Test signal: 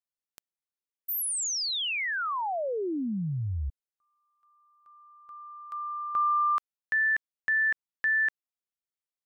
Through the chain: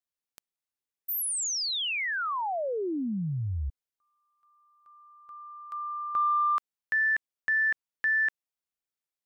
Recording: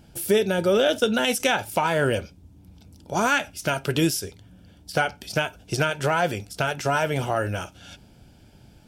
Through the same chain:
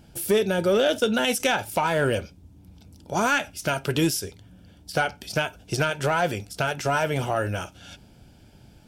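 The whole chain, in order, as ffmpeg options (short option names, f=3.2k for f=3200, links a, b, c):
-af "asoftclip=type=tanh:threshold=-10.5dB"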